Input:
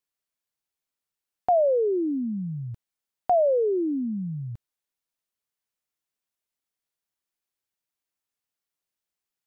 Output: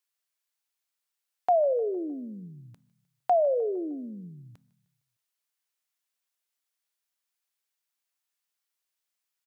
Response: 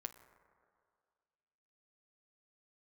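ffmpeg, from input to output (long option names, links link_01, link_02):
-filter_complex "[0:a]highpass=frequency=1100:poles=1,aecho=1:1:153|306|459|612:0.0794|0.0421|0.0223|0.0118,asplit=2[link_01][link_02];[1:a]atrim=start_sample=2205,afade=type=out:start_time=0.22:duration=0.01,atrim=end_sample=10143[link_03];[link_02][link_03]afir=irnorm=-1:irlink=0,volume=-1.5dB[link_04];[link_01][link_04]amix=inputs=2:normalize=0"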